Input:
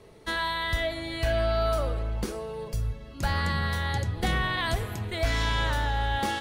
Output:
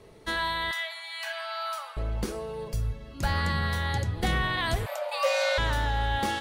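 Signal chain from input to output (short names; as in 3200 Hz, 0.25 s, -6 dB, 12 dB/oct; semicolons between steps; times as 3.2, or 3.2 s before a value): 0.71–1.97 Chebyshev high-pass 840 Hz, order 4; 4.86–5.58 frequency shift +490 Hz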